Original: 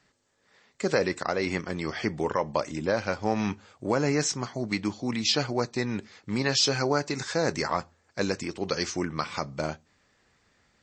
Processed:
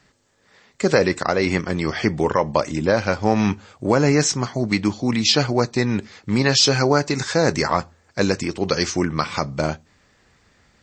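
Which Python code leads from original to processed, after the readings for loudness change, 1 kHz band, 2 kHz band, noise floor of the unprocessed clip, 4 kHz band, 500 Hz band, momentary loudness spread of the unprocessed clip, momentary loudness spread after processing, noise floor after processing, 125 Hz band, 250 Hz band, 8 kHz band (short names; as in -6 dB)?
+8.0 dB, +7.5 dB, +7.5 dB, -68 dBFS, +7.5 dB, +8.0 dB, 8 LU, 8 LU, -60 dBFS, +10.5 dB, +9.0 dB, +7.5 dB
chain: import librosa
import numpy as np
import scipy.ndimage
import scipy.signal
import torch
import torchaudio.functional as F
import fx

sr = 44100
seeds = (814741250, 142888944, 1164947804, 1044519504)

y = fx.low_shelf(x, sr, hz=160.0, db=5.0)
y = y * librosa.db_to_amplitude(7.5)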